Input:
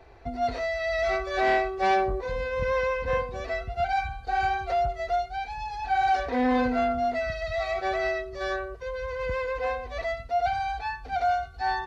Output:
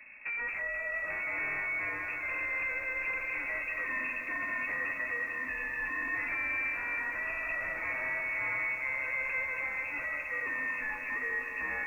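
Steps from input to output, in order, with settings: tracing distortion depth 0.27 ms; peaking EQ 230 Hz +13 dB 2.2 oct; compression, threshold -20 dBFS, peak gain reduction 10 dB; hard clipper -28.5 dBFS, distortion -7 dB; thinning echo 200 ms, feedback 84%, high-pass 480 Hz, level -7.5 dB; frequency inversion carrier 2.6 kHz; bit-crushed delay 479 ms, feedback 80%, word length 9-bit, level -11 dB; trim -5.5 dB

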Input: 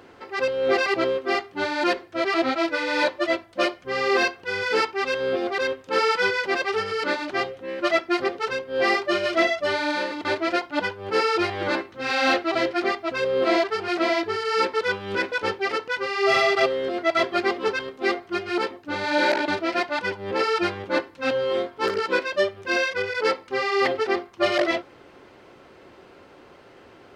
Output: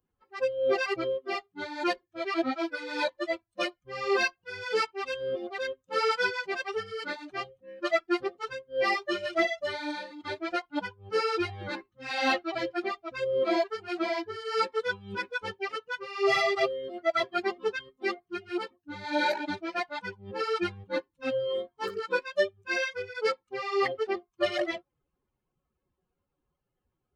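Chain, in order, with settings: expander on every frequency bin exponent 2; trim -1.5 dB; AAC 64 kbps 44.1 kHz

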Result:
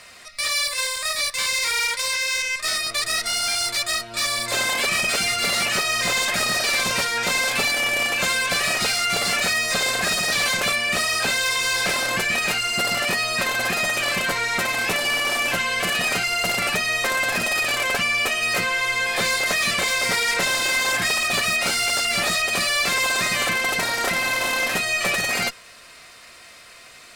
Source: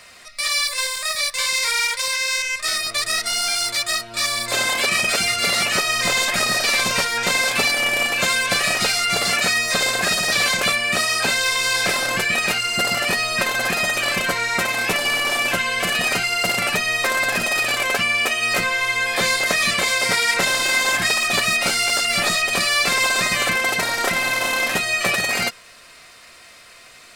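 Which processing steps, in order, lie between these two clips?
saturation -16 dBFS, distortion -15 dB; Chebyshev shaper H 2 -15 dB, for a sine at -16 dBFS

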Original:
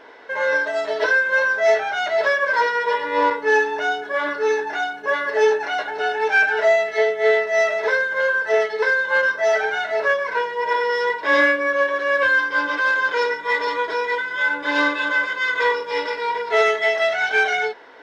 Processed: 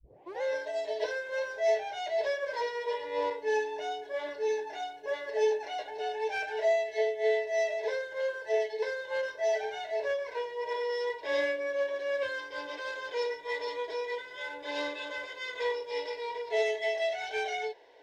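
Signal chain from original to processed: tape start-up on the opening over 0.42 s; static phaser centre 540 Hz, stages 4; trim -9 dB

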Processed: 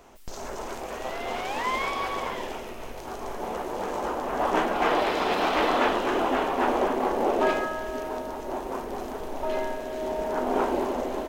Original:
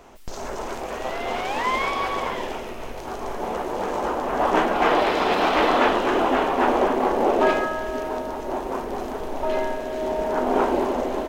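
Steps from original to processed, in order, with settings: treble shelf 6.5 kHz +5 dB; trim -4.5 dB

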